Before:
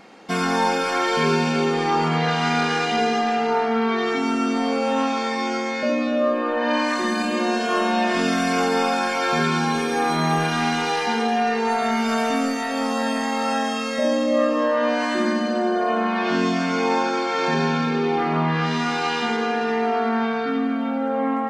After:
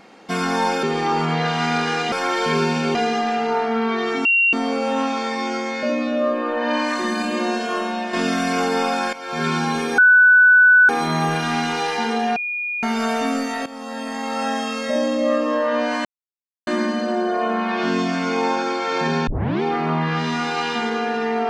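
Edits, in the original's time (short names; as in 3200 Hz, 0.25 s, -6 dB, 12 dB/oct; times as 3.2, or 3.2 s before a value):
0.83–1.66 move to 2.95
4.25–4.53 bleep 2750 Hz -13 dBFS
7.46–8.13 fade out, to -7 dB
9.13–9.47 fade in quadratic, from -13 dB
9.98 add tone 1490 Hz -8 dBFS 0.91 s
11.45–11.92 bleep 2440 Hz -22.5 dBFS
12.75–13.62 fade in, from -14.5 dB
15.14 insert silence 0.62 s
17.74 tape start 0.35 s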